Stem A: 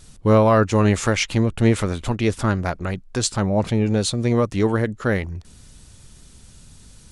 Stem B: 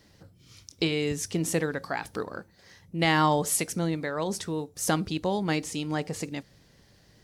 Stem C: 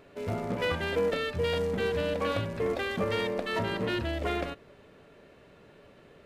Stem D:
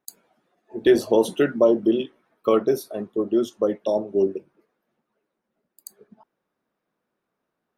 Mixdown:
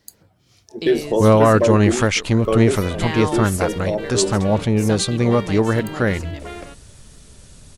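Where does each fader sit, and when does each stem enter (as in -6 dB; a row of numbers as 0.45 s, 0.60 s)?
+2.0 dB, -3.5 dB, -3.0 dB, -1.0 dB; 0.95 s, 0.00 s, 2.20 s, 0.00 s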